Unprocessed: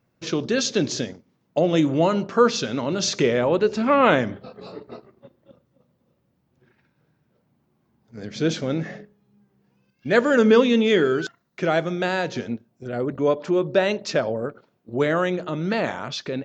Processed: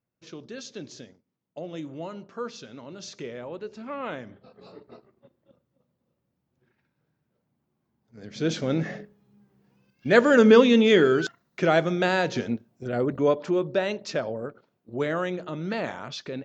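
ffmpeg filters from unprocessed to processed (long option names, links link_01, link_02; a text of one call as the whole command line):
ffmpeg -i in.wav -af "volume=0.5dB,afade=type=in:start_time=4.24:duration=0.44:silence=0.398107,afade=type=in:start_time=8.2:duration=0.63:silence=0.334965,afade=type=out:start_time=12.99:duration=0.82:silence=0.473151" out.wav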